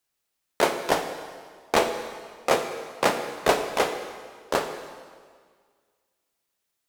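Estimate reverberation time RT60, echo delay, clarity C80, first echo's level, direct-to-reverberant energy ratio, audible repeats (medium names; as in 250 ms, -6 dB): 1.8 s, no echo, 9.0 dB, no echo, 6.5 dB, no echo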